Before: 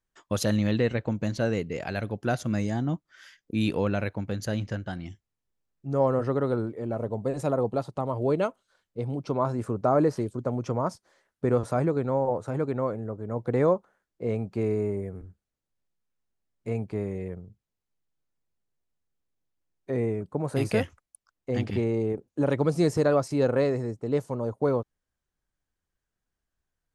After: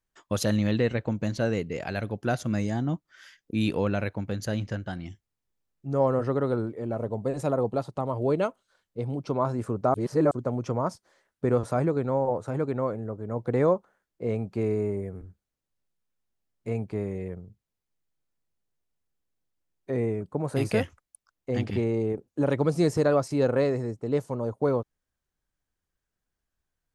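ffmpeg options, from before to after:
-filter_complex "[0:a]asplit=3[a][b][c];[a]atrim=end=9.942[d];[b]atrim=start=9.938:end=10.312,asetpts=PTS-STARTPTS,areverse[e];[c]atrim=start=10.308[f];[d][e]acrossfade=d=0.004:c1=hsin:c2=hsin[g];[g][f]acrossfade=d=0.004:c1=hsin:c2=hsin"

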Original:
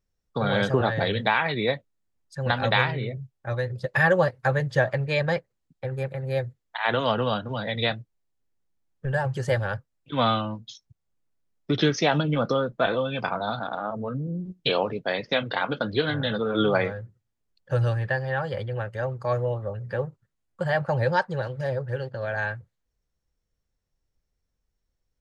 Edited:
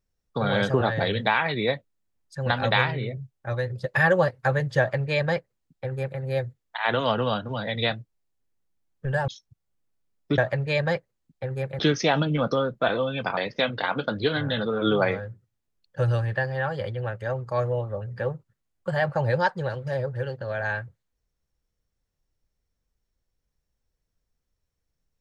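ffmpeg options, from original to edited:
-filter_complex "[0:a]asplit=5[a][b][c][d][e];[a]atrim=end=9.282[f];[b]atrim=start=10.668:end=11.772[g];[c]atrim=start=4.788:end=6.202[h];[d]atrim=start=11.768:end=13.352[i];[e]atrim=start=15.098[j];[f][g]acrossfade=d=0.004:c1=hsin:c2=hsin[k];[k][h]acrossfade=d=0.004:c1=hsin:c2=hsin[l];[l][i]acrossfade=d=0.004:c1=hsin:c2=hsin[m];[m][j]acrossfade=d=0.004:c1=hsin:c2=hsin"

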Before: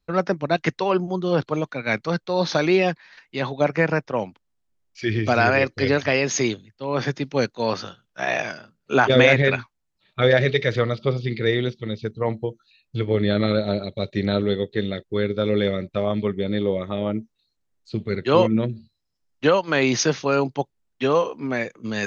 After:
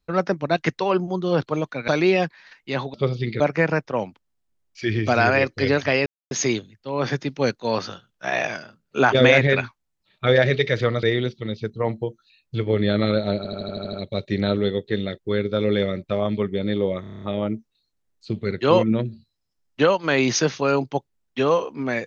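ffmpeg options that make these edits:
-filter_complex "[0:a]asplit=20[a][b][c][d][e][f][g][h][i][j][k][l][m][n][o][p][q][r][s][t];[a]atrim=end=1.882[u];[b]atrim=start=2.538:end=3.602[v];[c]atrim=start=10.978:end=11.442[w];[d]atrim=start=3.598:end=6.26,asetpts=PTS-STARTPTS,afade=t=out:st=2.658:d=0.004:c=hsin,apad=pad_dur=0.25[x];[e]atrim=start=6.26:end=10.982,asetpts=PTS-STARTPTS,afade=t=in:d=0.004:c=hsin[y];[f]atrim=start=11.438:end=13.862[z];[g]atrim=start=13.778:end=13.862[aa];[h]atrim=start=13.778:end=13.862[ab];[i]atrim=start=13.778:end=13.862[ac];[j]atrim=start=13.778:end=13.862[ad];[k]atrim=start=13.778:end=13.862[ae];[l]atrim=start=13.778:end=13.862[af];[m]atrim=start=13.778:end=16.892[ag];[n]atrim=start=16.858:end=16.892[ah];[o]atrim=start=16.858:end=16.892[ai];[p]atrim=start=16.858:end=16.892[aj];[q]atrim=start=16.858:end=16.892[ak];[r]atrim=start=16.858:end=16.892[al];[s]atrim=start=16.858:end=16.892[am];[t]atrim=start=16.858[an];[u][v]acrossfade=d=0.004:c1=hsin:c2=hsin[ao];[ao][w]acrossfade=d=0.004:c1=hsin:c2=hsin[ap];[x][y]concat=n=2:v=0:a=1[aq];[ap][aq]acrossfade=d=0.004:c1=hsin:c2=hsin[ar];[ar][z]acrossfade=d=0.004:c1=hsin:c2=hsin[as];[as][aa]acrossfade=d=0.004:c1=hsin:c2=hsin[at];[at][ab]acrossfade=d=0.004:c1=hsin:c2=hsin[au];[au][ac]acrossfade=d=0.004:c1=hsin:c2=hsin[av];[av][ad]acrossfade=d=0.004:c1=hsin:c2=hsin[aw];[aw][ae]acrossfade=d=0.004:c1=hsin:c2=hsin[ax];[ax][af]acrossfade=d=0.004:c1=hsin:c2=hsin[ay];[ay][ag]acrossfade=d=0.004:c1=hsin:c2=hsin[az];[az][ah]acrossfade=d=0.004:c1=hsin:c2=hsin[ba];[ba][ai]acrossfade=d=0.004:c1=hsin:c2=hsin[bb];[bb][aj]acrossfade=d=0.004:c1=hsin:c2=hsin[bc];[bc][ak]acrossfade=d=0.004:c1=hsin:c2=hsin[bd];[bd][al]acrossfade=d=0.004:c1=hsin:c2=hsin[be];[be][am]acrossfade=d=0.004:c1=hsin:c2=hsin[bf];[bf][an]acrossfade=d=0.004:c1=hsin:c2=hsin"

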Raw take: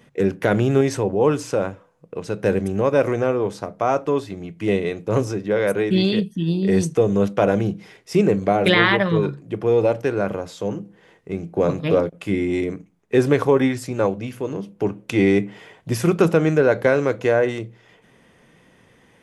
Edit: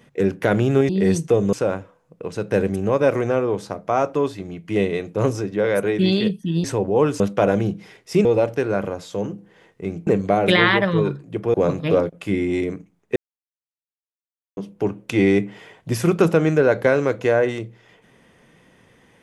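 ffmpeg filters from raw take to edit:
-filter_complex "[0:a]asplit=10[a][b][c][d][e][f][g][h][i][j];[a]atrim=end=0.892[k];[b]atrim=start=6.558:end=7.202[l];[c]atrim=start=1.448:end=6.562[m];[d]atrim=start=0.888:end=1.452[n];[e]atrim=start=7.198:end=8.252[o];[f]atrim=start=9.718:end=11.542[p];[g]atrim=start=8.248:end=9.722[q];[h]atrim=start=11.538:end=13.16,asetpts=PTS-STARTPTS,afade=t=out:st=1.618:d=0.004:c=hsin[r];[i]atrim=start=13.16:end=14.57,asetpts=PTS-STARTPTS,volume=0[s];[j]atrim=start=14.57,asetpts=PTS-STARTPTS,afade=t=in:d=0.004:c=hsin[t];[k][l]acrossfade=d=0.004:c1=hsin:c2=hsin[u];[u][m]acrossfade=d=0.004:c1=hsin:c2=hsin[v];[v][n]acrossfade=d=0.004:c1=hsin:c2=hsin[w];[w][o]acrossfade=d=0.004:c1=hsin:c2=hsin[x];[x][p]acrossfade=d=0.004:c1=hsin:c2=hsin[y];[y][q]acrossfade=d=0.004:c1=hsin:c2=hsin[z];[r][s][t]concat=n=3:v=0:a=1[aa];[z][aa]acrossfade=d=0.004:c1=hsin:c2=hsin"

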